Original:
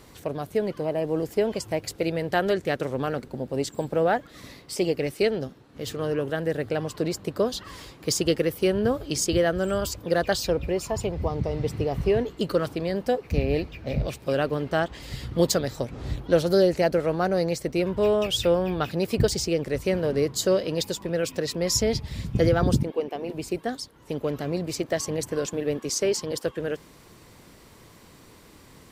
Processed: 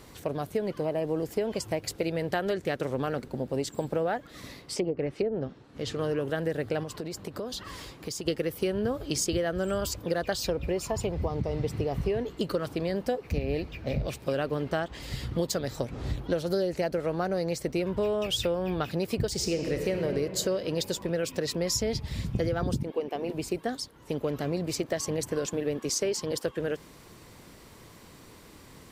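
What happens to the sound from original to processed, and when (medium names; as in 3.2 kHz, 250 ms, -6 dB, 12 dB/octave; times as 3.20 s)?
4.61–5.96 s: low-pass that closes with the level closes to 660 Hz, closed at -19 dBFS
6.83–8.28 s: compression 12:1, threshold -31 dBFS
19.31–20.05 s: reverb throw, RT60 2.5 s, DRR 4 dB
whole clip: compression, threshold -25 dBFS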